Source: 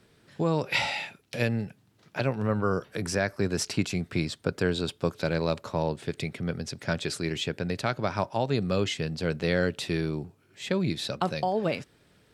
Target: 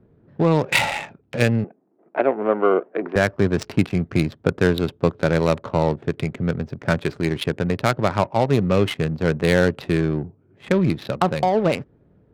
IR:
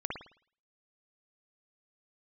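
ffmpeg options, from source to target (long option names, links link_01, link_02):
-filter_complex "[0:a]adynamicsmooth=sensitivity=3.5:basefreq=580,asettb=1/sr,asplit=3[link_01][link_02][link_03];[link_01]atrim=end=1.644[link_04];[link_02]atrim=start=1.64:end=3.16,asetpts=PTS-STARTPTS,afade=type=in:duration=0.004:curve=qsin,afade=type=out:start_time=1.516:duration=0.004:curve=qsin,highpass=frequency=270:width=0.5412,highpass=frequency=270:width=1.3066,equalizer=frequency=370:width_type=q:width=4:gain=5,equalizer=frequency=690:width_type=q:width=4:gain=7,equalizer=frequency=1600:width_type=q:width=4:gain=-3,lowpass=frequency=2300:width=0.5412,lowpass=frequency=2300:width=1.3066[link_05];[link_03]atrim=start=3.156[link_06];[link_04][link_05]acrossfade=duration=0.004:curve1=hsin:curve2=qsin[link_07];[link_07][link_06]acrossfade=duration=0.004:curve1=qsin:curve2=hsin,volume=8.5dB"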